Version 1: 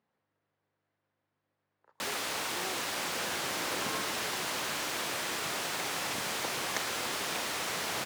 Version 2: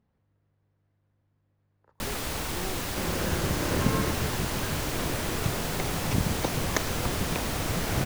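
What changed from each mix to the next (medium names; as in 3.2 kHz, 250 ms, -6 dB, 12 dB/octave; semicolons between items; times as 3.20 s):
second sound +7.5 dB; master: remove frequency weighting A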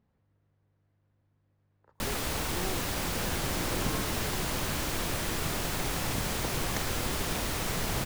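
second sound -9.5 dB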